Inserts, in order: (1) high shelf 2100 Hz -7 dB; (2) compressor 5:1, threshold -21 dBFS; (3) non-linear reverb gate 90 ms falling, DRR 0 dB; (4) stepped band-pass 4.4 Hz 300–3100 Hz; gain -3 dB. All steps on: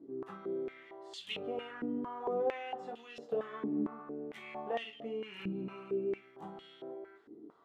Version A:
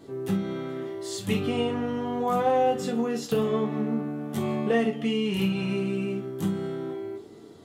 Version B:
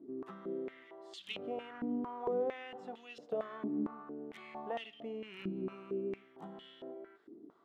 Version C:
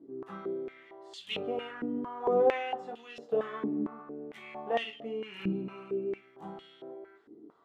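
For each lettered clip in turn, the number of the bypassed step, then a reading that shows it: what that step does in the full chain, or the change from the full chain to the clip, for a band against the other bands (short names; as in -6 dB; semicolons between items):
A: 4, 125 Hz band +9.0 dB; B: 3, 250 Hz band +2.0 dB; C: 2, mean gain reduction 2.0 dB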